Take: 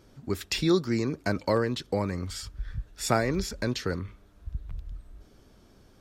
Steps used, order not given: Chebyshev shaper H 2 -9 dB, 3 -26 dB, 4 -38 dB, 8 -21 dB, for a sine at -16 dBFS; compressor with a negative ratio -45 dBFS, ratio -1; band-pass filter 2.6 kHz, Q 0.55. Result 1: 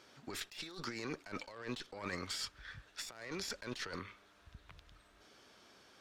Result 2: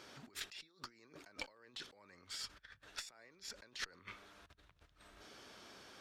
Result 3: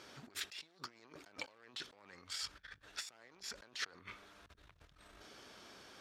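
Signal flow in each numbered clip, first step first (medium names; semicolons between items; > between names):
band-pass filter > Chebyshev shaper > compressor with a negative ratio; compressor with a negative ratio > band-pass filter > Chebyshev shaper; Chebyshev shaper > compressor with a negative ratio > band-pass filter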